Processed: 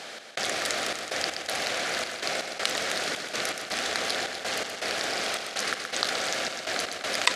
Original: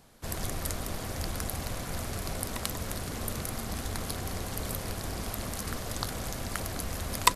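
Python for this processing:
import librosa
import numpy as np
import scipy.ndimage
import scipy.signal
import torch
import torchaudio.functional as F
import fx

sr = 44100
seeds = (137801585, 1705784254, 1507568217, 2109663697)

y = scipy.signal.sosfilt(scipy.signal.butter(2, 730.0, 'highpass', fs=sr, output='sos'), x)
y = fx.peak_eq(y, sr, hz=1000.0, db=-13.5, octaves=0.56)
y = fx.step_gate(y, sr, bpm=162, pattern='xx..xxxxxx..', floor_db=-60.0, edge_ms=4.5)
y = fx.air_absorb(y, sr, metres=110.0)
y = fx.echo_feedback(y, sr, ms=124, feedback_pct=56, wet_db=-12.0)
y = fx.env_flatten(y, sr, amount_pct=50)
y = y * 10.0 ** (6.5 / 20.0)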